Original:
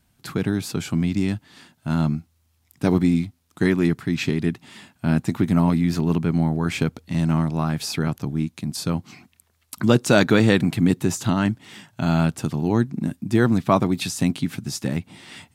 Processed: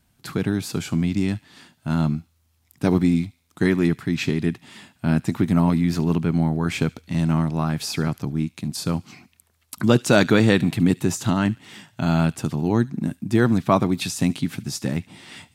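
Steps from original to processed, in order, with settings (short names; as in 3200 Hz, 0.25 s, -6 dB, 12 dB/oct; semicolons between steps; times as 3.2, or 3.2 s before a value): thin delay 72 ms, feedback 41%, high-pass 2200 Hz, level -18 dB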